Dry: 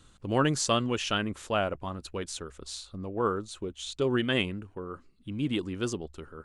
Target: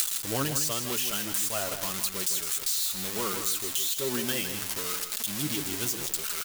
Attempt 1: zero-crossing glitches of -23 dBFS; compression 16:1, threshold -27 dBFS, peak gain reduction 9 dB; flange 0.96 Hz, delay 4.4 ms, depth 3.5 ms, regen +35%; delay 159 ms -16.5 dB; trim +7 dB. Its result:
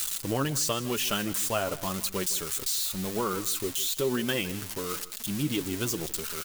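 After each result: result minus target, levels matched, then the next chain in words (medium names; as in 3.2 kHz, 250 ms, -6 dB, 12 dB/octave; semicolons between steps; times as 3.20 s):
zero-crossing glitches: distortion -11 dB; echo-to-direct -8.5 dB
zero-crossing glitches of -11.5 dBFS; compression 16:1, threshold -27 dBFS, peak gain reduction 14.5 dB; flange 0.96 Hz, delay 4.4 ms, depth 3.5 ms, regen +35%; delay 159 ms -16.5 dB; trim +7 dB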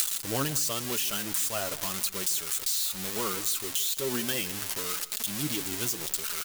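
echo-to-direct -8.5 dB
zero-crossing glitches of -11.5 dBFS; compression 16:1, threshold -27 dBFS, peak gain reduction 14.5 dB; flange 0.96 Hz, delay 4.4 ms, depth 3.5 ms, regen +35%; delay 159 ms -8 dB; trim +7 dB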